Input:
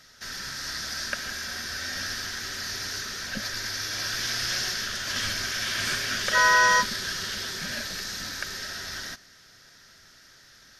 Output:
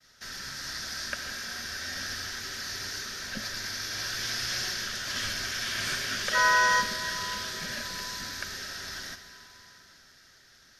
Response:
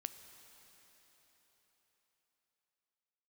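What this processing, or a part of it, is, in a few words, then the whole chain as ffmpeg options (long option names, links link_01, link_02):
cathedral: -filter_complex "[0:a]agate=range=-33dB:threshold=-51dB:ratio=3:detection=peak[link_01];[1:a]atrim=start_sample=2205[link_02];[link_01][link_02]afir=irnorm=-1:irlink=0"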